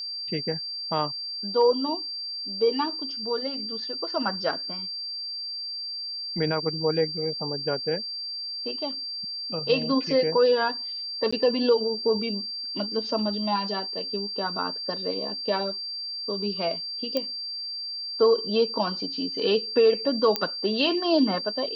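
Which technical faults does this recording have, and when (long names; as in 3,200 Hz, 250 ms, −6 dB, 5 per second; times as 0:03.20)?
whistle 4,700 Hz −31 dBFS
0:11.31–0:11.32: drop-out 15 ms
0:17.17: click −13 dBFS
0:20.36: click −9 dBFS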